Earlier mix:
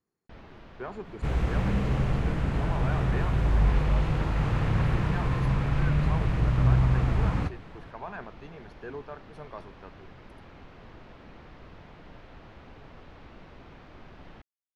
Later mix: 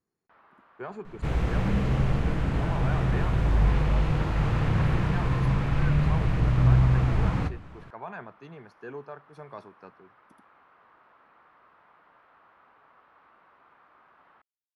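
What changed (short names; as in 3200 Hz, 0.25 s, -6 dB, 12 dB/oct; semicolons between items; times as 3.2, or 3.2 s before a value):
first sound: add band-pass 1200 Hz, Q 2.4; second sound: send +7.5 dB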